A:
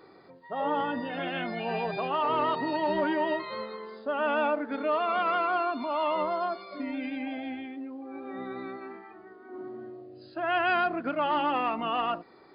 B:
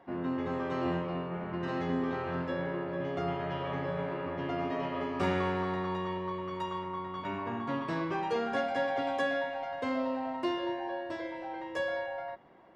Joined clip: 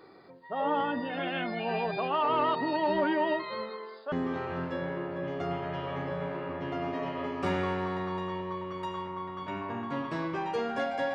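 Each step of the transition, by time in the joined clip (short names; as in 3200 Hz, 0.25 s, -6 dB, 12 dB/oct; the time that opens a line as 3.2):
A
3.69–4.12 HPF 200 Hz -> 760 Hz
4.12 switch to B from 1.89 s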